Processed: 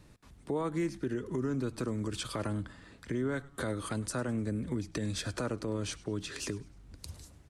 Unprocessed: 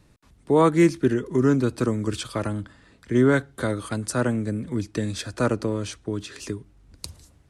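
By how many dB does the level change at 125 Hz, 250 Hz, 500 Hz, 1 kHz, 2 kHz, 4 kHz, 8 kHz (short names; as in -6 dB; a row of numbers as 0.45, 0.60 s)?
-10.0, -11.5, -12.5, -13.0, -10.5, -5.5, -5.5 dB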